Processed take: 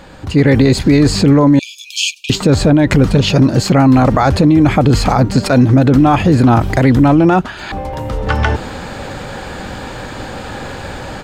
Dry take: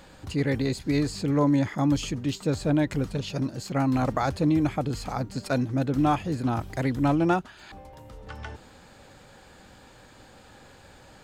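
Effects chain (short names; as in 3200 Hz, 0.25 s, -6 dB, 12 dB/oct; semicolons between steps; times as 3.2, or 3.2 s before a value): 1.59–2.3 brick-wall FIR high-pass 2300 Hz; AGC gain up to 13 dB; high shelf 4600 Hz -8.5 dB; maximiser +13.5 dB; gain -1 dB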